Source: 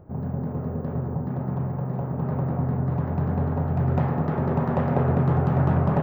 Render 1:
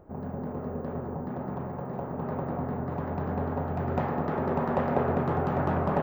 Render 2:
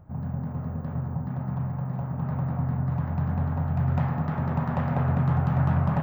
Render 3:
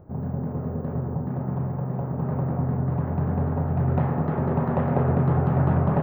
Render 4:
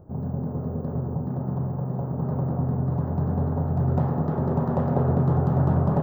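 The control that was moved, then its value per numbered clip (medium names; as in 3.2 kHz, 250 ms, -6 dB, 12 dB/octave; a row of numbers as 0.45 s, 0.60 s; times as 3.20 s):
peaking EQ, frequency: 120 Hz, 400 Hz, 5.9 kHz, 2.3 kHz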